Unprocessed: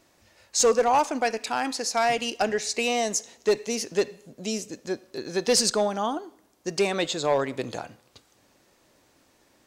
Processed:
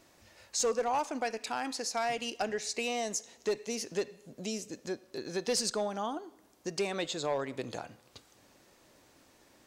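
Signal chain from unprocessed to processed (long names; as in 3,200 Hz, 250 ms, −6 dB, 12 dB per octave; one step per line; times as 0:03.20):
downward compressor 1.5 to 1, threshold −45 dBFS, peak gain reduction 10 dB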